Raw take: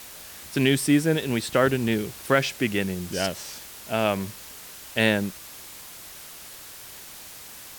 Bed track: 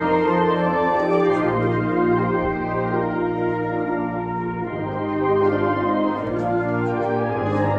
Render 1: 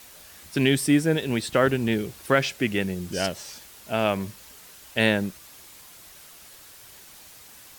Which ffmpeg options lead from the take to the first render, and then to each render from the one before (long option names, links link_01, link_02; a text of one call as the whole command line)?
ffmpeg -i in.wav -af "afftdn=noise_reduction=6:noise_floor=-43" out.wav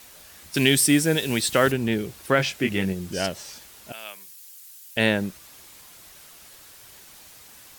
ffmpeg -i in.wav -filter_complex "[0:a]asettb=1/sr,asplit=3[link_01][link_02][link_03];[link_01]atrim=end=0.544[link_04];[link_02]atrim=start=0.54:end=1.72,asetpts=PTS-STARTPTS,afade=type=in:duration=0.004:curve=qsin,afade=type=out:start_time=1.176:duration=0.004:curve=qsin,highshelf=frequency=2900:gain=11[link_05];[link_03]atrim=start=1.716[link_06];[link_04][link_05]acrossfade=duration=0.004:curve1=hsin:curve2=qsin[link_07];[link_07][link_06]acrossfade=duration=0.004:curve1=qsin:curve2=hsin,asettb=1/sr,asplit=3[link_08][link_09][link_10];[link_08]atrim=end=2.374[link_11];[link_09]atrim=start=2.37:end=2.93,asetpts=PTS-STARTPTS,afade=type=in:duration=0.004:curve=qsin,afade=type=out:start_time=0.556:duration=0.004:curve=qsin,asplit=2[link_12][link_13];[link_13]adelay=21,volume=-5.5dB[link_14];[link_12][link_14]amix=inputs=2:normalize=0,atrim=end_sample=24696[link_15];[link_10]atrim=start=2.926[link_16];[link_11][link_15]acrossfade=duration=0.004:curve1=hsin:curve2=qsin[link_17];[link_17][link_16]acrossfade=duration=0.004:curve1=qsin:curve2=hsin,asettb=1/sr,asplit=3[link_18][link_19][link_20];[link_18]atrim=end=3.924[link_21];[link_19]atrim=start=3.92:end=4.97,asetpts=PTS-STARTPTS,afade=type=in:duration=0.004:curve=qsin,afade=type=out:start_time=1.046:duration=0.004:curve=qsin,aderivative[link_22];[link_20]atrim=start=4.966[link_23];[link_21][link_22]acrossfade=duration=0.004:curve1=hsin:curve2=qsin[link_24];[link_24][link_23]acrossfade=duration=0.004:curve1=qsin:curve2=hsin" out.wav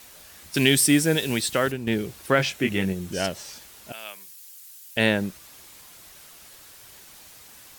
ffmpeg -i in.wav -filter_complex "[0:a]asettb=1/sr,asplit=3[link_01][link_02][link_03];[link_01]atrim=end=2.504[link_04];[link_02]atrim=start=2.5:end=3.27,asetpts=PTS-STARTPTS,afade=type=in:duration=0.004:curve=qsin,afade=type=out:start_time=0.766:duration=0.004:curve=qsin,bandreject=frequency=4800:width=12[link_05];[link_03]atrim=start=3.266[link_06];[link_04][link_05]acrossfade=duration=0.004:curve1=hsin:curve2=qsin[link_07];[link_07][link_06]acrossfade=duration=0.004:curve1=qsin:curve2=hsin,asplit=2[link_08][link_09];[link_08]atrim=end=1.87,asetpts=PTS-STARTPTS,afade=type=out:start_time=1.24:duration=0.63:silence=0.398107[link_10];[link_09]atrim=start=1.87,asetpts=PTS-STARTPTS,afade=type=in:duration=0.004:curve=hsin:silence=0.398107[link_11];[link_10][link_11]concat=n=2:v=0:a=1" out.wav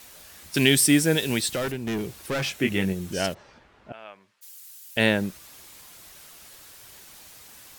ffmpeg -i in.wav -filter_complex "[0:a]asettb=1/sr,asplit=3[link_01][link_02][link_03];[link_01]atrim=end=1.554[link_04];[link_02]atrim=start=1.55:end=2.61,asetpts=PTS-STARTPTS,afade=type=in:duration=0.004:curve=qsin,afade=type=out:start_time=1.056:duration=0.004:curve=qsin,asoftclip=type=hard:threshold=-24.5dB[link_05];[link_03]atrim=start=2.606[link_06];[link_04][link_05]acrossfade=duration=0.004:curve1=hsin:curve2=qsin[link_07];[link_07][link_06]acrossfade=duration=0.004:curve1=qsin:curve2=hsin,asplit=3[link_08][link_09][link_10];[link_08]afade=type=out:start_time=3.33:duration=0.02[link_11];[link_09]lowpass=1600,afade=type=in:start_time=3.33:duration=0.02,afade=type=out:start_time=4.41:duration=0.02[link_12];[link_10]afade=type=in:start_time=4.41:duration=0.02[link_13];[link_11][link_12][link_13]amix=inputs=3:normalize=0" out.wav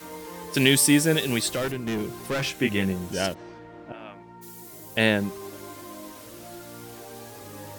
ffmpeg -i in.wav -i bed.wav -filter_complex "[1:a]volume=-21.5dB[link_01];[0:a][link_01]amix=inputs=2:normalize=0" out.wav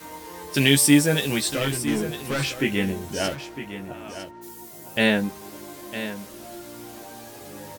ffmpeg -i in.wav -filter_complex "[0:a]asplit=2[link_01][link_02];[link_02]adelay=14,volume=-5dB[link_03];[link_01][link_03]amix=inputs=2:normalize=0,aecho=1:1:956:0.266" out.wav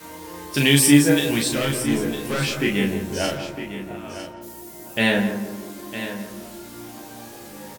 ffmpeg -i in.wav -filter_complex "[0:a]asplit=2[link_01][link_02];[link_02]adelay=35,volume=-4dB[link_03];[link_01][link_03]amix=inputs=2:normalize=0,asplit=2[link_04][link_05];[link_05]adelay=170,lowpass=frequency=1200:poles=1,volume=-7dB,asplit=2[link_06][link_07];[link_07]adelay=170,lowpass=frequency=1200:poles=1,volume=0.46,asplit=2[link_08][link_09];[link_09]adelay=170,lowpass=frequency=1200:poles=1,volume=0.46,asplit=2[link_10][link_11];[link_11]adelay=170,lowpass=frequency=1200:poles=1,volume=0.46,asplit=2[link_12][link_13];[link_13]adelay=170,lowpass=frequency=1200:poles=1,volume=0.46[link_14];[link_04][link_06][link_08][link_10][link_12][link_14]amix=inputs=6:normalize=0" out.wav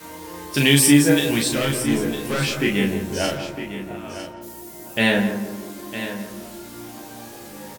ffmpeg -i in.wav -af "volume=1dB,alimiter=limit=-3dB:level=0:latency=1" out.wav